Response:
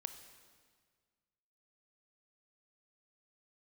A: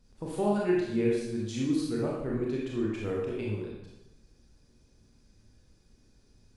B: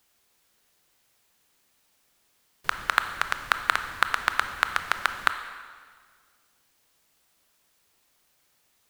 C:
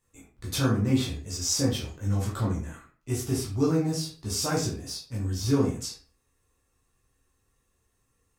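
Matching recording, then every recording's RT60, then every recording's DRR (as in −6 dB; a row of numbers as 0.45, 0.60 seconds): B; 0.85, 1.7, 0.40 seconds; −4.0, 8.5, −5.0 decibels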